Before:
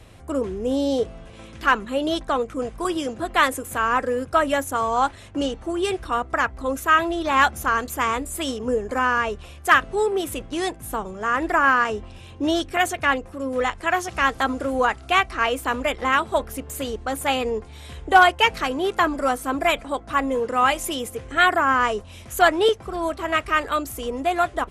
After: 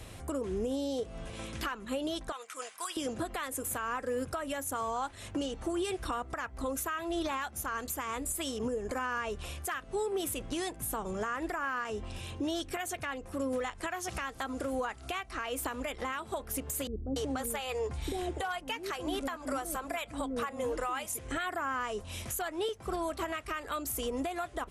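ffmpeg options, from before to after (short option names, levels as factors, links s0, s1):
-filter_complex "[0:a]asettb=1/sr,asplit=3[s0][s1][s2];[s0]atrim=end=2.324[s3];[s1]atrim=start=2.32:end=2.97,asetpts=PTS-STARTPTS,afade=t=in:d=0.004:c=qsin,afade=t=out:st=0.646:d=0.004:c=qsin,highpass=1400[s4];[s2]atrim=start=2.966[s5];[s3][s4]acrossfade=d=0.004:c1=hsin:c2=qsin[s6];[s6][s5]acrossfade=d=0.004:c1=qsin:c2=hsin,asettb=1/sr,asplit=3[s7][s8][s9];[s7]atrim=end=16.874[s10];[s8]atrim=start=16.87:end=21.19,asetpts=PTS-STARTPTS,afade=t=in:d=0.004:c=qsin,afade=t=out:st=4.316:d=0.004:c=qsin,acrossover=split=400[s11][s12];[s12]adelay=290[s13];[s11][s13]amix=inputs=2:normalize=0,atrim=end_sample=190512[s14];[s9]atrim=start=21.186[s15];[s10][s14]acrossfade=d=0.004:c1=hsin:c2=qsin[s16];[s16][s15]acrossfade=d=0.004:c1=qsin:c2=hsin,highshelf=f=5700:g=8,acompressor=threshold=0.0398:ratio=8,alimiter=level_in=1.12:limit=0.0631:level=0:latency=1:release=179,volume=0.891"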